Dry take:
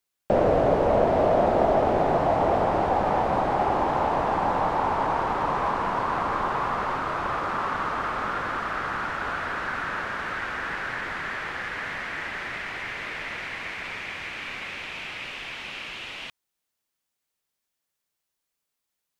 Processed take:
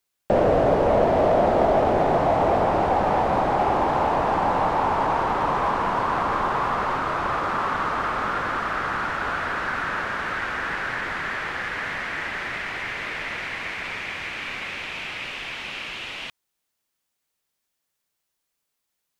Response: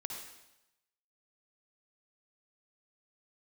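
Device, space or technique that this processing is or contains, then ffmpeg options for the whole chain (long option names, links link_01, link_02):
parallel distortion: -filter_complex "[0:a]asplit=2[link_01][link_02];[link_02]asoftclip=type=hard:threshold=-23dB,volume=-7dB[link_03];[link_01][link_03]amix=inputs=2:normalize=0"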